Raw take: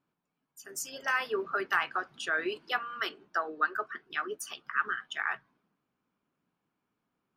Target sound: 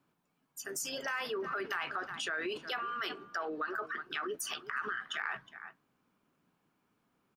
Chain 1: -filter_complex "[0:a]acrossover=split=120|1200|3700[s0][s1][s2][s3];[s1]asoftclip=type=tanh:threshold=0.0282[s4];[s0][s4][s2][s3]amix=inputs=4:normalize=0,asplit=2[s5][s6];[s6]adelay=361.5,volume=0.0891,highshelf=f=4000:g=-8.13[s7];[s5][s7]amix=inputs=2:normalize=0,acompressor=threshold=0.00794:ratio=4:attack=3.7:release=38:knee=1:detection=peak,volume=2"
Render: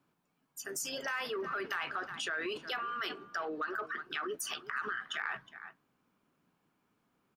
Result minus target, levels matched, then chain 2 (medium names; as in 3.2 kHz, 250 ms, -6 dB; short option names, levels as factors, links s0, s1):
saturation: distortion +16 dB
-filter_complex "[0:a]acrossover=split=120|1200|3700[s0][s1][s2][s3];[s1]asoftclip=type=tanh:threshold=0.1[s4];[s0][s4][s2][s3]amix=inputs=4:normalize=0,asplit=2[s5][s6];[s6]adelay=361.5,volume=0.0891,highshelf=f=4000:g=-8.13[s7];[s5][s7]amix=inputs=2:normalize=0,acompressor=threshold=0.00794:ratio=4:attack=3.7:release=38:knee=1:detection=peak,volume=2"